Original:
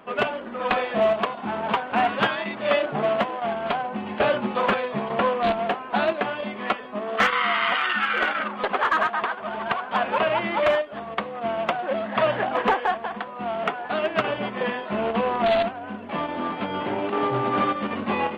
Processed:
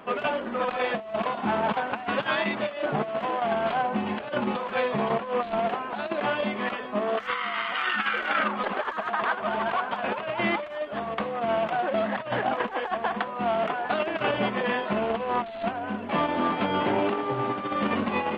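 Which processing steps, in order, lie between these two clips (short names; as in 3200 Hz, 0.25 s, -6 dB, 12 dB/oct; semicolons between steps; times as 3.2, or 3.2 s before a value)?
negative-ratio compressor -26 dBFS, ratio -0.5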